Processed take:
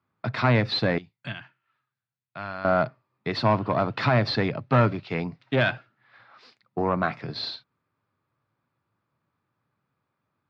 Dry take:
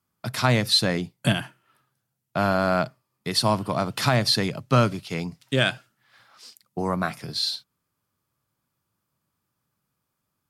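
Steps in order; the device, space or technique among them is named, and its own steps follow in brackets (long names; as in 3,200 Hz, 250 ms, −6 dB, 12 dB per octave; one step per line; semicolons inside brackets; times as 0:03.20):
0:00.98–0:02.65: guitar amp tone stack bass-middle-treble 5-5-5
guitar amplifier (tube saturation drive 16 dB, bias 0.25; bass and treble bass −2 dB, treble −7 dB; loudspeaker in its box 85–3,900 Hz, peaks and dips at 110 Hz +3 dB, 190 Hz −3 dB, 3,100 Hz −7 dB)
level +4 dB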